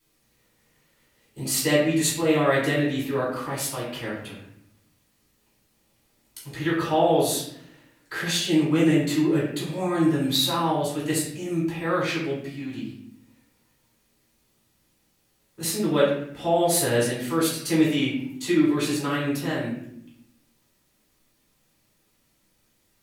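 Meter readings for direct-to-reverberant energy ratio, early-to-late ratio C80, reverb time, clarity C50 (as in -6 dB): -7.5 dB, 6.0 dB, 0.70 s, 2.5 dB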